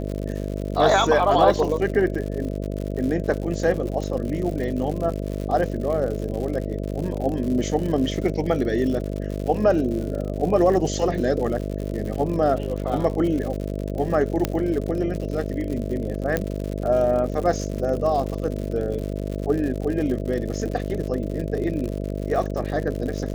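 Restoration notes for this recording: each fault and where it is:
mains buzz 50 Hz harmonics 13 −28 dBFS
surface crackle 110 per second −29 dBFS
0:14.45: click −7 dBFS
0:16.37: click −9 dBFS

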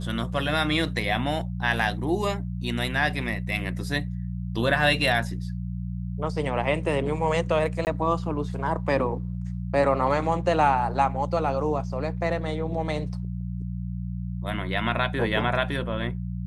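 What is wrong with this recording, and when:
mains hum 60 Hz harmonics 3 −31 dBFS
0:07.85–0:07.87: drop-out 19 ms

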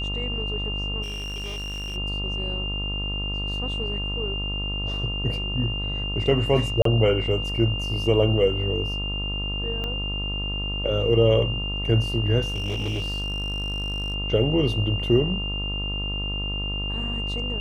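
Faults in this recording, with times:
mains buzz 50 Hz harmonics 27 −30 dBFS
whistle 2,800 Hz −29 dBFS
0:01.02–0:01.97: clipping −29 dBFS
0:06.82–0:06.85: drop-out 33 ms
0:09.84: click −18 dBFS
0:12.48–0:14.14: clipping −23.5 dBFS

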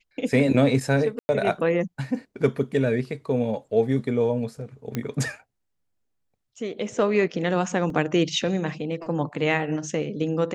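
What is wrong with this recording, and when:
0:01.19–0:01.29: drop-out 100 ms
0:04.95: click −14 dBFS
0:07.90: drop-out 2.1 ms

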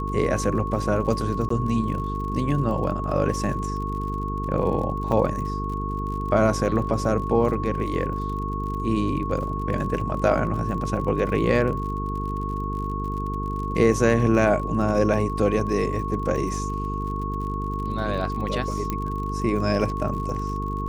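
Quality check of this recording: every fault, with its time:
mains buzz 50 Hz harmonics 9 −29 dBFS
surface crackle 50 per second −33 dBFS
whistle 1,100 Hz −30 dBFS
0:01.49–0:01.50: drop-out
0:05.12: drop-out 3.2 ms
0:18.90: click −13 dBFS

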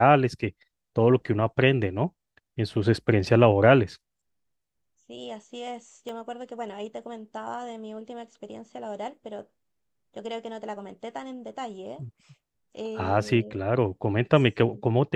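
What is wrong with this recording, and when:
0:06.09: drop-out 3 ms

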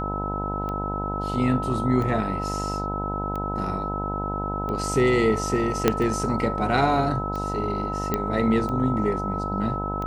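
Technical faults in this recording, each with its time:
mains buzz 50 Hz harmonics 20 −30 dBFS
scratch tick 45 rpm −20 dBFS
whistle 1,300 Hz −29 dBFS
0:05.88: click −4 dBFS
0:08.14: click −10 dBFS

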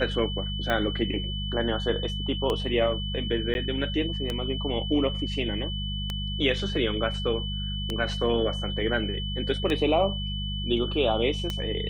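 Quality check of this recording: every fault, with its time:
mains hum 50 Hz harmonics 4 −32 dBFS
scratch tick 33 1/3 rpm −14 dBFS
whistle 3,000 Hz −34 dBFS
0:03.54–0:03.55: drop-out

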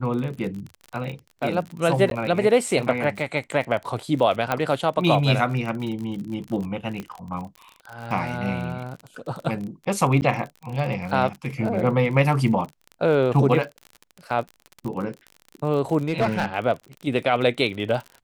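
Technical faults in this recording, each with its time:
surface crackle 41 per second −30 dBFS
0:02.10–0:02.11: drop-out 12 ms
0:04.52: click −9 dBFS
0:07.00: click −19 dBFS
0:10.21–0:10.22: drop-out 9.8 ms
0:16.08–0:16.54: clipping −16 dBFS

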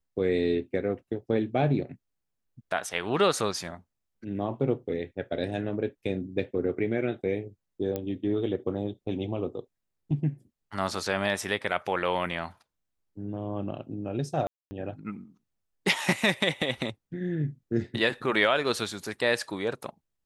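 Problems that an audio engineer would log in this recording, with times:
0:07.96: click −18 dBFS
0:14.47–0:14.71: drop-out 240 ms

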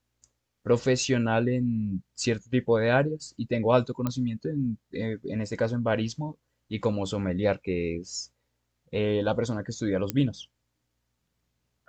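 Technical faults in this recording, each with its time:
0:04.07: click −15 dBFS
0:10.10: click −11 dBFS

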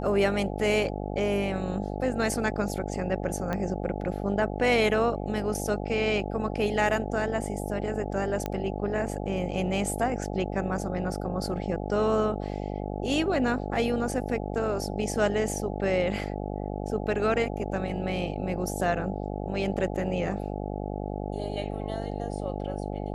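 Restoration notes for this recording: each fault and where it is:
mains buzz 50 Hz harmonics 17 −33 dBFS
0:03.53: click −17 dBFS
0:08.46: click −16 dBFS

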